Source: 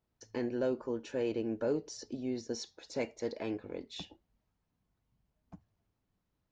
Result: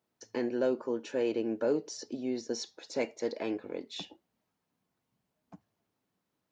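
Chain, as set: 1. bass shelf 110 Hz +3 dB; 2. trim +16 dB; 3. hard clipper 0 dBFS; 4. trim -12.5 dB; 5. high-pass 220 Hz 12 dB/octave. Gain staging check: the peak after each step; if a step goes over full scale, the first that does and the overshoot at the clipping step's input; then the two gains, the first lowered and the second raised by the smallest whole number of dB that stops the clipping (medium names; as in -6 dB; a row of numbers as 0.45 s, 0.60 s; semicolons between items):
-22.0 dBFS, -6.0 dBFS, -6.0 dBFS, -18.5 dBFS, -18.0 dBFS; nothing clips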